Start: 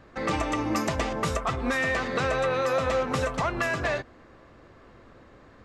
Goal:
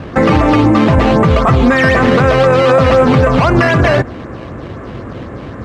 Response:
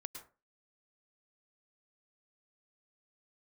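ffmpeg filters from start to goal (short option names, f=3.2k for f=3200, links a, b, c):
-af "aemphasis=mode=reproduction:type=bsi,acrusher=samples=9:mix=1:aa=0.000001:lfo=1:lforange=9:lforate=3.9,highpass=110,lowpass=2.8k,alimiter=level_in=24dB:limit=-1dB:release=50:level=0:latency=1,volume=-1dB"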